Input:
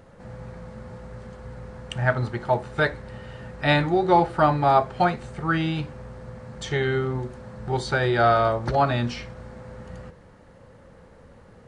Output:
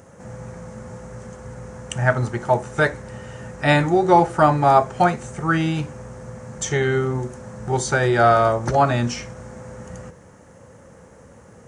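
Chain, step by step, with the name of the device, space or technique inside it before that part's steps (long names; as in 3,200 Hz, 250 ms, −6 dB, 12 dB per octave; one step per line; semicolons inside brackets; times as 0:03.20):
budget condenser microphone (high-pass filter 73 Hz; high shelf with overshoot 5,200 Hz +6.5 dB, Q 3)
level +4 dB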